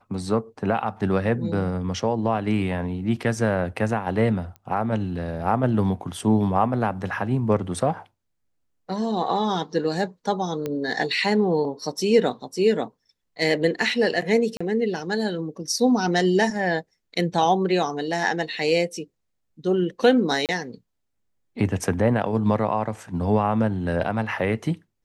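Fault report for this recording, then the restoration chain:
4.56 pop -26 dBFS
10.66 pop -15 dBFS
14.57–14.61 gap 35 ms
20.46–20.49 gap 28 ms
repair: de-click; interpolate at 14.57, 35 ms; interpolate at 20.46, 28 ms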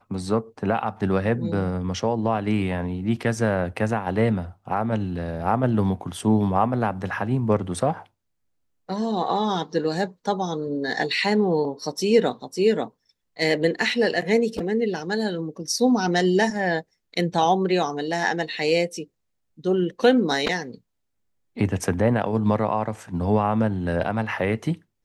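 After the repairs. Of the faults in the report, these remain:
10.66 pop

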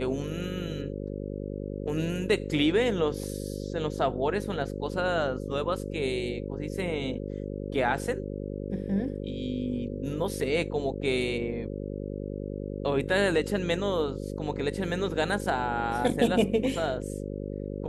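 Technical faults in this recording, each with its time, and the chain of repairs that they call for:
buzz 50 Hz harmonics 11 -35 dBFS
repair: de-hum 50 Hz, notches 11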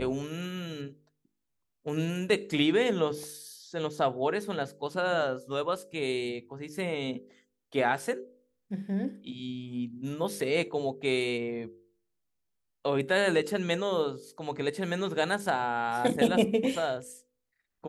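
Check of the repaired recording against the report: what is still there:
none

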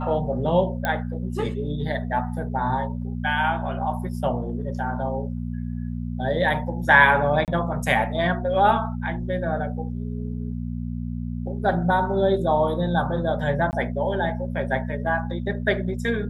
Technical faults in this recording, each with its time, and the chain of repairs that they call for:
hum 60 Hz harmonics 4 -29 dBFS
0.85 pop -11 dBFS
7.45–7.48 gap 28 ms
13.71–13.73 gap 19 ms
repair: de-click; de-hum 60 Hz, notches 4; interpolate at 7.45, 28 ms; interpolate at 13.71, 19 ms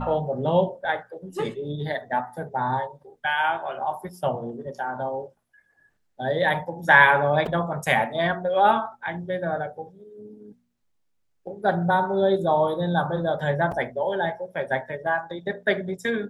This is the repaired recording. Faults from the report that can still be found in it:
none

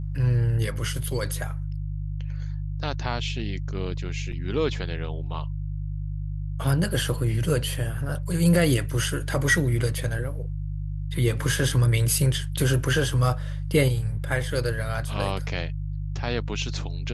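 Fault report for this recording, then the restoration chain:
hum 50 Hz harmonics 3 -30 dBFS
4.32–4.33 gap 5.3 ms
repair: de-hum 50 Hz, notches 3; interpolate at 4.32, 5.3 ms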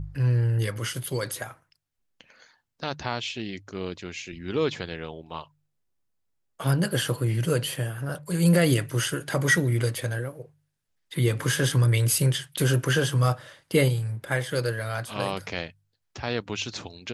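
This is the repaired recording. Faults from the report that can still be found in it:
none

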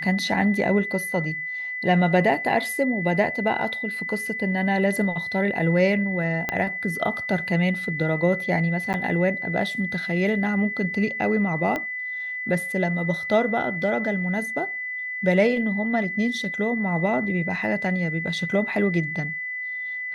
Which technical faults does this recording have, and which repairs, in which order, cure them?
tone 2000 Hz -28 dBFS
6.49 pop -10 dBFS
8.93–8.94 gap 9.3 ms
11.76 pop -14 dBFS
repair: de-click; notch 2000 Hz, Q 30; interpolate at 8.93, 9.3 ms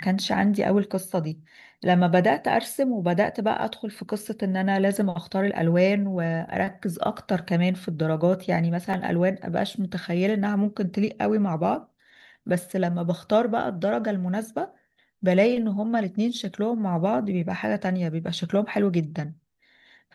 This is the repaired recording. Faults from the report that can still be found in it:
6.49 pop
11.76 pop

